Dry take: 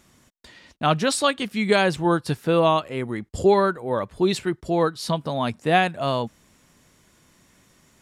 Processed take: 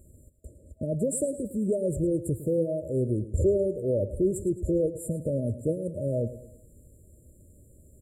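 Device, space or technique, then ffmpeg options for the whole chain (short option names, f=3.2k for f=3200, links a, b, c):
car stereo with a boomy subwoofer: -af "lowshelf=f=120:t=q:w=1.5:g=11,alimiter=limit=-18dB:level=0:latency=1:release=68,afftfilt=real='re*(1-between(b*sr/4096,640,7100))':imag='im*(1-between(b*sr/4096,640,7100))':win_size=4096:overlap=0.75,equalizer=f=440:w=0.63:g=3,aecho=1:1:108|216|324|432:0.2|0.0878|0.0386|0.017"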